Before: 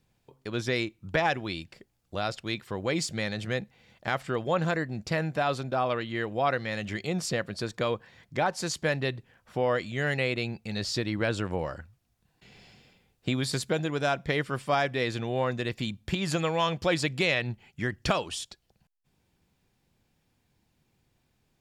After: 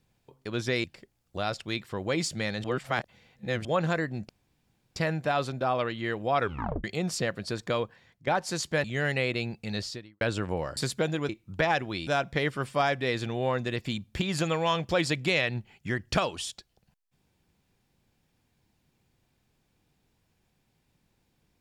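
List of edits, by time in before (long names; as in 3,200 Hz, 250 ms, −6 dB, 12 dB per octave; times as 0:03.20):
0:00.84–0:01.62: move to 0:14.00
0:03.42–0:04.43: reverse
0:05.07: splice in room tone 0.67 s
0:06.50: tape stop 0.45 s
0:07.87–0:08.38: fade out, to −13.5 dB
0:08.95–0:09.86: remove
0:10.79–0:11.23: fade out quadratic
0:11.79–0:13.48: remove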